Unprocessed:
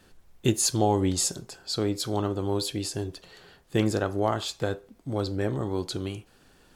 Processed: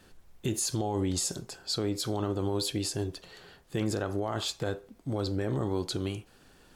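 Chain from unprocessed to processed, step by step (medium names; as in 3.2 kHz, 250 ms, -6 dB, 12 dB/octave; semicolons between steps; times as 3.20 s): peak limiter -21 dBFS, peak gain reduction 11 dB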